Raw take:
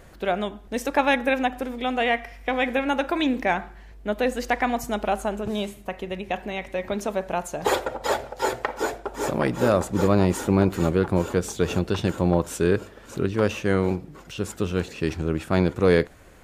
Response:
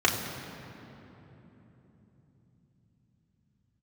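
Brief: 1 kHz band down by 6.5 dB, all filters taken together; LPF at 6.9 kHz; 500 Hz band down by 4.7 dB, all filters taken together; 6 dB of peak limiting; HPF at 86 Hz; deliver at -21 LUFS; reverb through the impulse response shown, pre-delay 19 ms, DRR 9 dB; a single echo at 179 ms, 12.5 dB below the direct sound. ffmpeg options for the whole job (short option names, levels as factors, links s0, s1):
-filter_complex "[0:a]highpass=86,lowpass=6900,equalizer=f=500:t=o:g=-4,equalizer=f=1000:t=o:g=-7.5,alimiter=limit=0.2:level=0:latency=1,aecho=1:1:179:0.237,asplit=2[s0][s1];[1:a]atrim=start_sample=2205,adelay=19[s2];[s1][s2]afir=irnorm=-1:irlink=0,volume=0.0631[s3];[s0][s3]amix=inputs=2:normalize=0,volume=2.24"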